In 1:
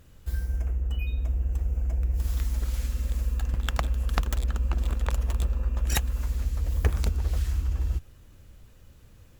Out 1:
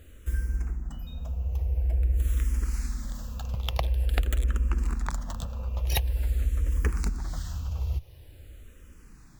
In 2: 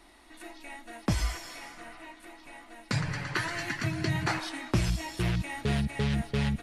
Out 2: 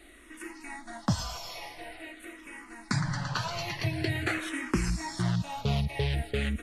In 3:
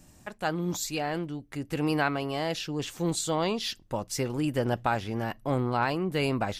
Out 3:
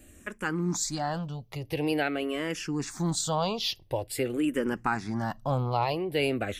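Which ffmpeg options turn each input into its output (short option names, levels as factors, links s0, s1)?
-filter_complex "[0:a]asplit=2[s0][s1];[s1]acompressor=threshold=0.0224:ratio=6,volume=0.891[s2];[s0][s2]amix=inputs=2:normalize=0,asplit=2[s3][s4];[s4]afreqshift=-0.47[s5];[s3][s5]amix=inputs=2:normalize=1"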